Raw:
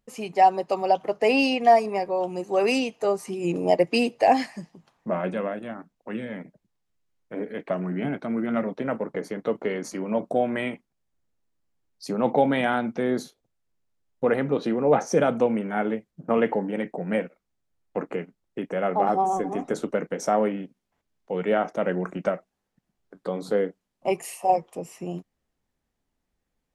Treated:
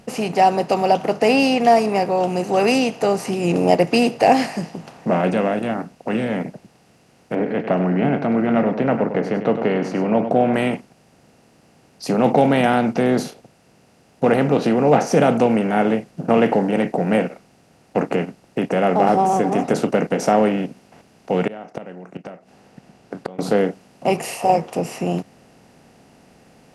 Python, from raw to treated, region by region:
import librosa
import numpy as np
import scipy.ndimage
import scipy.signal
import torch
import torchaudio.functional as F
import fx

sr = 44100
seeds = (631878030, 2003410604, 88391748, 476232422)

y = fx.chain(x, sr, fx.lowpass(hz=2300.0, slope=12),
    fx.echo_single(ms=99, db=-15.0), at=(7.35, 10.54))
y = fx.chain(y, sr, fx.high_shelf(hz=9100.0, db=-11.0),
    fx.gate_flip(shuts_db=-23.0, range_db=-31), at=(21.47, 23.39))
y = fx.bin_compress(y, sr, power=0.6)
y = scipy.signal.sosfilt(scipy.signal.butter(2, 43.0, 'highpass', fs=sr, output='sos'), y)
y = fx.bass_treble(y, sr, bass_db=8, treble_db=2)
y = F.gain(torch.from_numpy(y), 1.0).numpy()